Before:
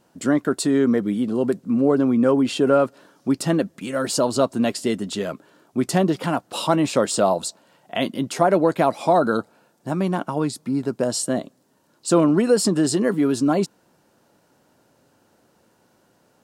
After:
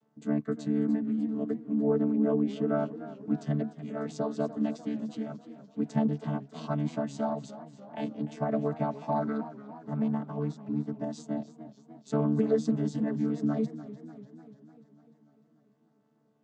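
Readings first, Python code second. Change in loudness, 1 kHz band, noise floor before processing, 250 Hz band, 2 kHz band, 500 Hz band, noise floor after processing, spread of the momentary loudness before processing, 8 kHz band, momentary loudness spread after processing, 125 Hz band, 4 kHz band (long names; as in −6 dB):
−10.0 dB, −13.5 dB, −62 dBFS, −8.0 dB, −16.5 dB, −12.0 dB, −68 dBFS, 9 LU, below −25 dB, 15 LU, −6.0 dB, −22.5 dB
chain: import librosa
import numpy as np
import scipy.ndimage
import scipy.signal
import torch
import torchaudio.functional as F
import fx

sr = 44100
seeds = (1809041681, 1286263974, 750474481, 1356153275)

y = fx.chord_vocoder(x, sr, chord='bare fifth', root=50)
y = fx.echo_warbled(y, sr, ms=296, feedback_pct=61, rate_hz=2.8, cents=102, wet_db=-15)
y = y * 10.0 ** (-9.0 / 20.0)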